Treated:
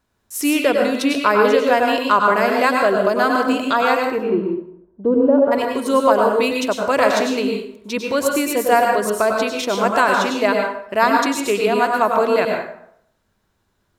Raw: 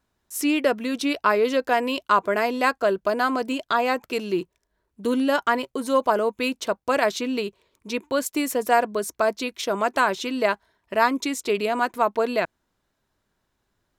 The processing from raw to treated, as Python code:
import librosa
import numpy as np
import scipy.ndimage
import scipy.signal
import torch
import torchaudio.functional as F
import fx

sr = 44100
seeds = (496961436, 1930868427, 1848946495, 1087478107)

y = fx.lowpass_res(x, sr, hz=fx.line((4.09, 1300.0), (5.51, 470.0)), q=1.6, at=(4.09, 5.51), fade=0.02)
y = fx.rev_plate(y, sr, seeds[0], rt60_s=0.68, hf_ratio=0.65, predelay_ms=85, drr_db=1.0)
y = F.gain(torch.from_numpy(y), 3.5).numpy()